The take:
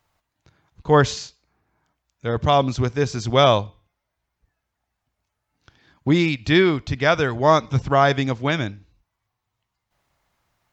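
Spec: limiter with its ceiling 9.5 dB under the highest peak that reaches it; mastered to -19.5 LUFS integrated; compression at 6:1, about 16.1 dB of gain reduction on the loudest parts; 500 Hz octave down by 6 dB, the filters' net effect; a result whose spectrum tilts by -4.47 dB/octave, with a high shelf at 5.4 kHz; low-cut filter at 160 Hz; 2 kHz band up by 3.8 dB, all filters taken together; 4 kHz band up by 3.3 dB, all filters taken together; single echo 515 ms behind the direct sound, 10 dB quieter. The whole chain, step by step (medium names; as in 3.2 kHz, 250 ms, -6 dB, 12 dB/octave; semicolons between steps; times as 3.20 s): high-pass 160 Hz; peaking EQ 500 Hz -8.5 dB; peaking EQ 2 kHz +5 dB; peaking EQ 4 kHz +4 dB; treble shelf 5.4 kHz -4.5 dB; compression 6:1, threshold -30 dBFS; peak limiter -25 dBFS; delay 515 ms -10 dB; trim +17.5 dB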